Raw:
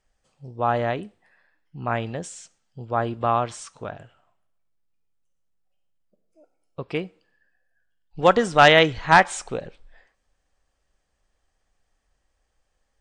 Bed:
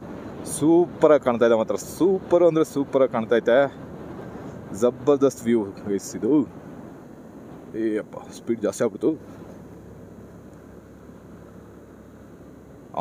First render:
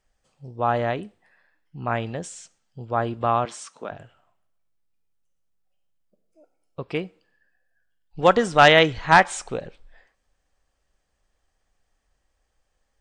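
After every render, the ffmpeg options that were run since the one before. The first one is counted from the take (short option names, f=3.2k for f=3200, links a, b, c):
-filter_complex "[0:a]asettb=1/sr,asplit=3[a][b][c];[a]atrim=end=3.454[d];[b]atrim=start=3.45:end=3.91,asetpts=PTS-STARTPTS,afade=t=in:d=0.004:c=qsin,afade=t=out:st=0.456:d=0.004:c=qsin,highpass=f=200:w=0.5412,highpass=f=200:w=1.3066[e];[c]atrim=start=3.906[f];[d][e]acrossfade=d=0.004:c1=hsin:c2=qsin[g];[g][f]acrossfade=d=0.004:c1=qsin:c2=hsin"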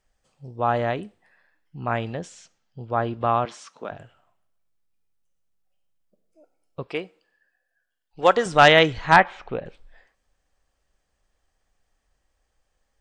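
-filter_complex "[0:a]asettb=1/sr,asplit=3[a][b][c];[a]atrim=end=2.154[d];[b]atrim=start=2.15:end=3.85,asetpts=PTS-STARTPTS,afade=t=in:d=0.004:c=qsin,afade=t=out:st=1.696:d=0.004:c=qsin,equalizer=f=8.6k:t=o:w=0.64:g=-12[e];[c]atrim=start=3.846[f];[d][e]acrossfade=d=0.004:c1=hsin:c2=qsin[g];[g][f]acrossfade=d=0.004:c1=qsin:c2=hsin,asettb=1/sr,asplit=3[h][i][j];[h]atrim=end=6.874[k];[i]atrim=start=6.87:end=8.46,asetpts=PTS-STARTPTS,afade=t=in:d=0.004:c=qsin,afade=t=out:st=1.586:d=0.004:c=qsin,bass=f=250:g=-12,treble=f=4k:g=0[l];[j]atrim=start=8.456[m];[k][l]acrossfade=d=0.004:c1=hsin:c2=qsin[n];[n][m]acrossfade=d=0.004:c1=qsin:c2=hsin,asettb=1/sr,asplit=3[o][p][q];[o]atrim=end=9.164[r];[p]atrim=start=9.16:end=9.66,asetpts=PTS-STARTPTS,afade=t=in:d=0.004:c=qsin,afade=t=out:st=0.496:d=0.004:c=qsin,lowpass=f=3.1k:w=0.5412,lowpass=f=3.1k:w=1.3066[s];[q]atrim=start=9.656[t];[r][s]acrossfade=d=0.004:c1=hsin:c2=qsin[u];[u][t]acrossfade=d=0.004:c1=qsin:c2=hsin"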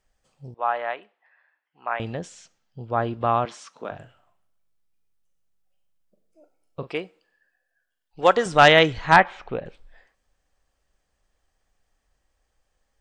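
-filter_complex "[0:a]asettb=1/sr,asplit=3[a][b][c];[a]atrim=end=0.544[d];[b]atrim=start=0.54:end=2,asetpts=PTS-STARTPTS,afade=t=in:d=0.004:c=qsin,afade=t=out:st=1.456:d=0.004:c=qsin,asuperpass=centerf=1400:order=4:qfactor=0.64[e];[c]atrim=start=1.996[f];[d][e]acrossfade=d=0.004:c1=hsin:c2=qsin[g];[g][f]acrossfade=d=0.004:c1=qsin:c2=hsin,asettb=1/sr,asplit=3[h][i][j];[h]atrim=end=3.724[k];[i]atrim=start=3.72:end=6.9,asetpts=PTS-STARTPTS,afade=t=in:d=0.004:c=qsin,afade=t=out:st=3.176:d=0.004:c=qsin,asplit=2[l][m];[m]adelay=40,volume=-11.5dB[n];[l][n]amix=inputs=2:normalize=0,atrim=end_sample=140238[o];[j]atrim=start=6.896[p];[k][o]acrossfade=d=0.004:c1=hsin:c2=qsin[q];[q][p]acrossfade=d=0.004:c1=qsin:c2=hsin"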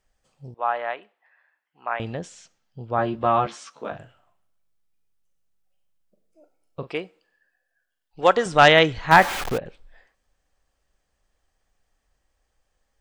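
-filter_complex "[0:a]asettb=1/sr,asplit=3[a][b][c];[a]atrim=end=2.974[d];[b]atrim=start=2.97:end=3.96,asetpts=PTS-STARTPTS,afade=t=in:d=0.004:c=qsin,afade=t=out:st=0.986:d=0.004:c=qsin,asplit=2[e][f];[f]adelay=14,volume=-2.5dB[g];[e][g]amix=inputs=2:normalize=0,atrim=end_sample=43659[h];[c]atrim=start=3.956[i];[d][h]acrossfade=d=0.004:c1=hsin:c2=qsin[j];[j][i]acrossfade=d=0.004:c1=qsin:c2=hsin,asettb=1/sr,asplit=3[k][l][m];[k]atrim=end=9.114[n];[l]atrim=start=9.11:end=9.58,asetpts=PTS-STARTPTS,afade=t=in:d=0.004:c=qsin,afade=t=out:st=0.466:d=0.004:c=qsin,aeval=exprs='val(0)+0.5*0.0631*sgn(val(0))':c=same[o];[m]atrim=start=9.576[p];[n][o]acrossfade=d=0.004:c1=hsin:c2=qsin[q];[q][p]acrossfade=d=0.004:c1=qsin:c2=hsin"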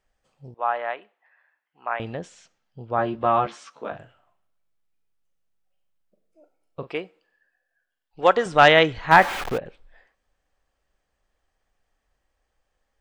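-af "bass=f=250:g=-3,treble=f=4k:g=-6"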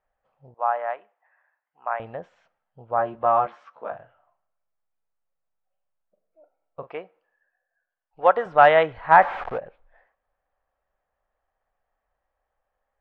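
-af "lowpass=1.5k,lowshelf=f=460:t=q:w=1.5:g=-8"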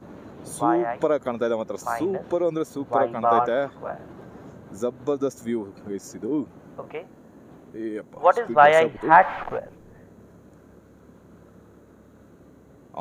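-filter_complex "[1:a]volume=-6.5dB[a];[0:a][a]amix=inputs=2:normalize=0"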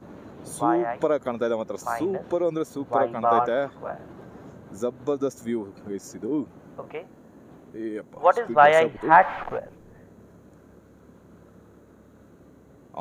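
-af "volume=-1dB"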